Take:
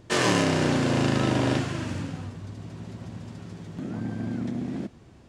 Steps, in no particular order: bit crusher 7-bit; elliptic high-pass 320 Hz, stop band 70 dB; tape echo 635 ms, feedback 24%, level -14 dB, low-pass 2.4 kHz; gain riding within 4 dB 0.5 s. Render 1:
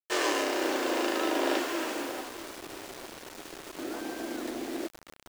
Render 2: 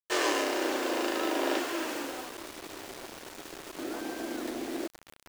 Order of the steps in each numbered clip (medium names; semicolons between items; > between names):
elliptic high-pass > tape echo > gain riding > bit crusher; gain riding > tape echo > elliptic high-pass > bit crusher